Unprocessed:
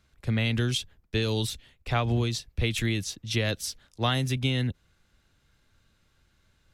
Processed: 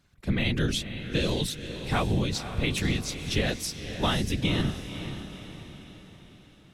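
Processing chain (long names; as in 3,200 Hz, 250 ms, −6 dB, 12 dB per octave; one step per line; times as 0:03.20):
random phases in short frames
feedback delay with all-pass diffusion 520 ms, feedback 48%, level −10 dB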